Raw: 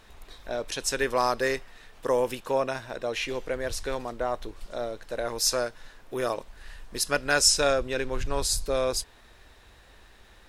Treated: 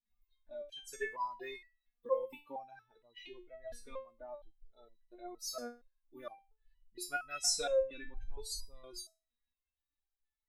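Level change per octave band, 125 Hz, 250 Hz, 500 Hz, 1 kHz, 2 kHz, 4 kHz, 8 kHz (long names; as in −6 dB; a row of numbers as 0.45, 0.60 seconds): below −20 dB, −18.5 dB, −12.5 dB, −13.5 dB, −15.0 dB, −13.5 dB, −13.0 dB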